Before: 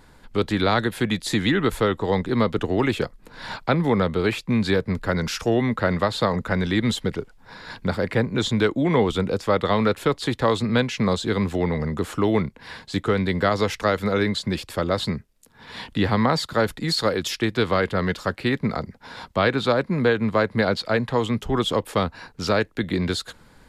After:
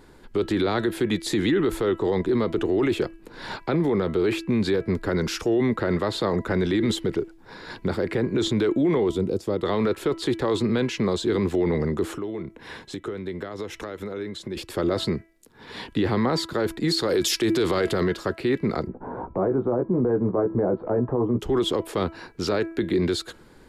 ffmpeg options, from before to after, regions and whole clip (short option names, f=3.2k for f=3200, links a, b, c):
-filter_complex "[0:a]asettb=1/sr,asplit=3[a][b][c];[a]atrim=end=9.094[d];[b]atrim=start=9.09:end=9.63,asetpts=PTS-STARTPTS,afade=t=in:d=0.004:c=qsin,afade=t=out:st=0.536:d=0.004:c=qsin,highpass=45,equalizer=f=1.6k:w=0.47:g=-13[e];[c]atrim=start=9.626[f];[d][e]acrossfade=d=0.004:c1=hsin:c2=qsin[g];[g][f]acrossfade=d=0.004:c1=qsin:c2=hsin,asettb=1/sr,asplit=3[h][i][j];[h]atrim=end=12.124[k];[i]atrim=start=12.12:end=14.57,asetpts=PTS-STARTPTS,afade=t=in:d=0.004:c=qsin,afade=t=out:st=2.446:d=0.004:c=qsin,bandreject=f=4.6k:w=6.6,acompressor=threshold=-31dB:ratio=10:attack=3.2:release=140:knee=1:detection=peak[l];[j]atrim=start=14.566[m];[k][l]acrossfade=d=0.004:c1=hsin:c2=qsin[n];[n][m]acrossfade=d=0.004:c1=qsin:c2=hsin,asettb=1/sr,asplit=3[o][p][q];[o]atrim=end=17.094[r];[p]atrim=start=17.09:end=18.04,asetpts=PTS-STARTPTS,afade=t=in:d=0.004:c=qsin,afade=t=out:st=0.946:d=0.004:c=qsin,acontrast=29,bass=f=250:g=-1,treble=f=4k:g=9[s];[q]atrim=start=18.036[t];[r][s]acrossfade=d=0.004:c1=hsin:c2=qsin[u];[u][t]acrossfade=d=0.004:c1=qsin:c2=hsin,asettb=1/sr,asplit=3[v][w][x];[v]atrim=end=18.874[y];[w]atrim=start=18.87:end=21.4,asetpts=PTS-STARTPTS,afade=t=in:d=0.004:c=qsin,afade=t=out:st=2.526:d=0.004:c=qsin,lowpass=f=1k:w=0.5412,lowpass=f=1k:w=1.3066,acompressor=mode=upward:threshold=-25dB:ratio=2.5:attack=3.2:release=140:knee=2.83:detection=peak,asplit=2[z][aa];[aa]adelay=16,volume=-6dB[ab];[z][ab]amix=inputs=2:normalize=0,atrim=end_sample=111573[ac];[x]atrim=start=21.396[ad];[y][ac]acrossfade=d=0.004:c1=hsin:c2=qsin[ae];[ae][ad]acrossfade=d=0.004:c1=qsin:c2=hsin,equalizer=f=360:t=o:w=0.63:g=12,bandreject=f=329.4:t=h:w=4,bandreject=f=658.8:t=h:w=4,bandreject=f=988.2:t=h:w=4,bandreject=f=1.3176k:t=h:w=4,bandreject=f=1.647k:t=h:w=4,bandreject=f=1.9764k:t=h:w=4,bandreject=f=2.3058k:t=h:w=4,bandreject=f=2.6352k:t=h:w=4,bandreject=f=2.9646k:t=h:w=4,alimiter=limit=-13dB:level=0:latency=1:release=18,volume=-1.5dB"